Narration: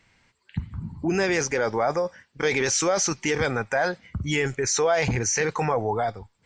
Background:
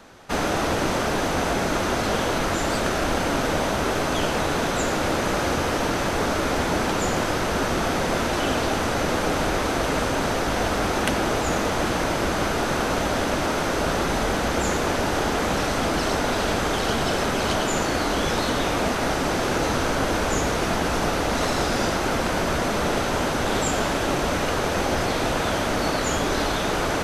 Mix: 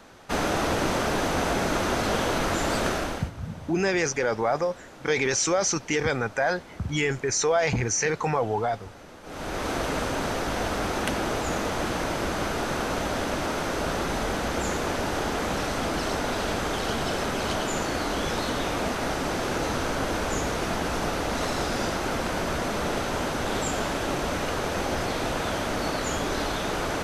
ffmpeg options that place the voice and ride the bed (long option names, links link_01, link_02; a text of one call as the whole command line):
ffmpeg -i stem1.wav -i stem2.wav -filter_complex "[0:a]adelay=2650,volume=-1dB[link_01];[1:a]volume=16.5dB,afade=type=out:start_time=2.88:duration=0.43:silence=0.0891251,afade=type=in:start_time=9.23:duration=0.48:silence=0.11885[link_02];[link_01][link_02]amix=inputs=2:normalize=0" out.wav